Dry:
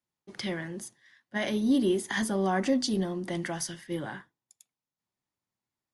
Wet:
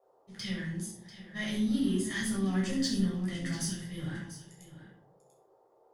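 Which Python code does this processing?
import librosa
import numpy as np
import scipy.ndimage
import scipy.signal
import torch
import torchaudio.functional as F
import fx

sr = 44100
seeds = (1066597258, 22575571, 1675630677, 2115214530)

p1 = 10.0 ** (-30.5 / 20.0) * np.tanh(x / 10.0 ** (-30.5 / 20.0))
p2 = x + (p1 * 10.0 ** (-4.5 / 20.0))
p3 = fx.dmg_noise_band(p2, sr, seeds[0], low_hz=380.0, high_hz=870.0, level_db=-50.0)
p4 = fx.tone_stack(p3, sr, knobs='6-0-2')
p5 = fx.hum_notches(p4, sr, base_hz=50, count=7)
p6 = p5 + 10.0 ** (-13.5 / 20.0) * np.pad(p5, (int(692 * sr / 1000.0), 0))[:len(p5)]
p7 = fx.room_shoebox(p6, sr, seeds[1], volume_m3=840.0, walls='furnished', distance_m=6.2)
y = p7 * 10.0 ** (5.0 / 20.0)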